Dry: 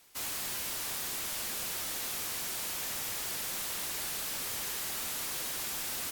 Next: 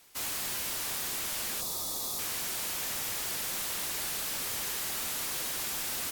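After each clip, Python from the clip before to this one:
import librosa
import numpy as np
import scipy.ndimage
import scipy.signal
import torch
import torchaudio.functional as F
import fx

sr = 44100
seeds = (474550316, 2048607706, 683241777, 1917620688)

y = fx.spec_box(x, sr, start_s=1.61, length_s=0.58, low_hz=1300.0, high_hz=3300.0, gain_db=-13)
y = F.gain(torch.from_numpy(y), 2.0).numpy()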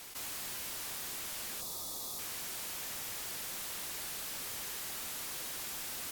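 y = fx.env_flatten(x, sr, amount_pct=70)
y = F.gain(torch.from_numpy(y), -7.0).numpy()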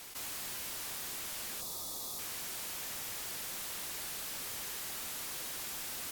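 y = x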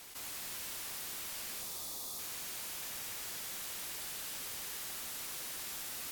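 y = fx.echo_wet_highpass(x, sr, ms=87, feedback_pct=76, hz=1400.0, wet_db=-7.0)
y = F.gain(torch.from_numpy(y), -3.0).numpy()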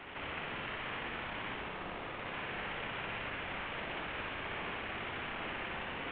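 y = fx.cvsd(x, sr, bps=16000)
y = fx.room_flutter(y, sr, wall_m=10.3, rt60_s=0.82)
y = F.gain(torch.from_numpy(y), 7.0).numpy()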